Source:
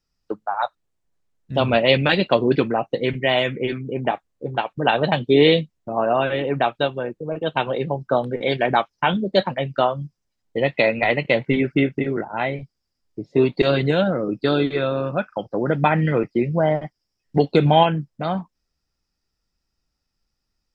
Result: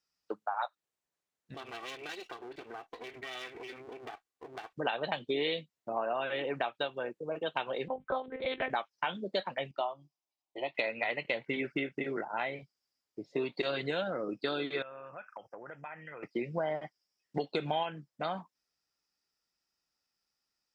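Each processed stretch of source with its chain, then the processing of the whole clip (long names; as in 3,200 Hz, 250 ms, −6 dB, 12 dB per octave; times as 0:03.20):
0:01.54–0:04.73: lower of the sound and its delayed copy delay 2.6 ms + downward compressor 12 to 1, threshold −32 dBFS
0:07.88–0:08.70: bad sample-rate conversion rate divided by 6×, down none, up hold + one-pitch LPC vocoder at 8 kHz 260 Hz
0:09.71–0:10.75: bass and treble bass −14 dB, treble −10 dB + phaser with its sweep stopped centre 320 Hz, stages 8
0:14.82–0:16.23: parametric band 250 Hz −10.5 dB 2 octaves + downward compressor 8 to 1, threshold −34 dBFS + Butterworth band-reject 4,000 Hz, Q 1.4
whole clip: high-pass filter 690 Hz 6 dB per octave; downward compressor 4 to 1, threshold −27 dBFS; level −3.5 dB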